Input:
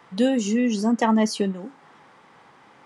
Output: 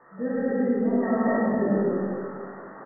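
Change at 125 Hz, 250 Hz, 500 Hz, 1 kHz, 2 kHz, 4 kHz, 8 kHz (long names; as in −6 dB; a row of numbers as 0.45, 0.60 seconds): can't be measured, −2.5 dB, +1.5 dB, −3.5 dB, −1.0 dB, below −40 dB, below −40 dB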